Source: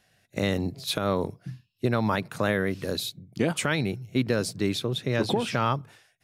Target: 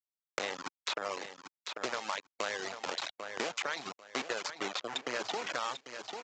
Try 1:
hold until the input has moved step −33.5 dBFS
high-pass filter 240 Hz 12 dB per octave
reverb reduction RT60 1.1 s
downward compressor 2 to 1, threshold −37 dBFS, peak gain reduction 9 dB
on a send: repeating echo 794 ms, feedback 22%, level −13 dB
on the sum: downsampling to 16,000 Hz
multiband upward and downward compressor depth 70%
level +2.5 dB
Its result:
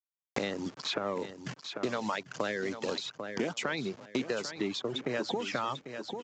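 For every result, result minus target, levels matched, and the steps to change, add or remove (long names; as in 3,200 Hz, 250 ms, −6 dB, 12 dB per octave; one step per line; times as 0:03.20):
250 Hz band +9.0 dB; hold until the input has moved: distortion −13 dB
change: high-pass filter 680 Hz 12 dB per octave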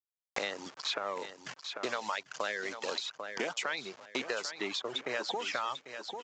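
hold until the input has moved: distortion −13 dB
change: hold until the input has moved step −22.5 dBFS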